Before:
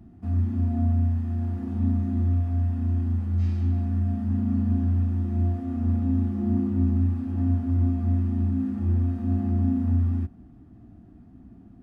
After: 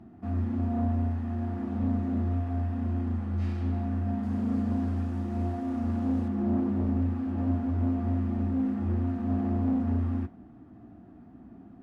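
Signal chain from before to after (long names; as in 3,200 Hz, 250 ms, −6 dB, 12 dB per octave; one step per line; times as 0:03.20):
stylus tracing distortion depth 0.15 ms
0:04.23–0:06.28: bass and treble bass −2 dB, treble +9 dB
mid-hump overdrive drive 20 dB, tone 1,100 Hz, clips at −12.5 dBFS
flanger 0.66 Hz, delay 8.5 ms, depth 4.9 ms, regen −79%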